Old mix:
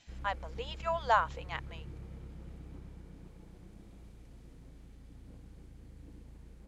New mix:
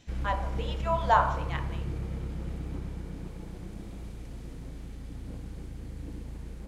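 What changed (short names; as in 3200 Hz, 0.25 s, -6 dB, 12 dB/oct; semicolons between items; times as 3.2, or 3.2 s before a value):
background +12.0 dB; reverb: on, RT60 0.70 s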